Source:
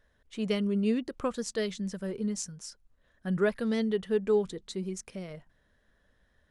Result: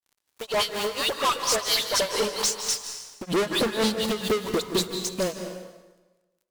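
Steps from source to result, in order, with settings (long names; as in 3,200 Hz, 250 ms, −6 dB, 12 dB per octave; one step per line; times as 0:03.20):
source passing by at 0:02.19, 7 m/s, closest 4.4 metres
octave-band graphic EQ 125/250/500/1,000/2,000/4,000 Hz −8/+3/+10/+9/−8/+11 dB
harmonic and percussive parts rebalanced percussive +3 dB
high-shelf EQ 4,100 Hz +7.5 dB
all-pass dispersion highs, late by 110 ms, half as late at 1,800 Hz
in parallel at −11.5 dB: bit-depth reduction 8 bits, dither triangular
on the sum: high-pass filter sweep 940 Hz → 81 Hz, 0:02.77–0:03.77
fuzz pedal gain 46 dB, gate −50 dBFS
granular cloud 245 ms, grains 4.3 per second, spray 30 ms, pitch spread up and down by 0 semitones
on a send at −7 dB: convolution reverb RT60 1.2 s, pre-delay 142 ms
on the sum: level −6.5 dB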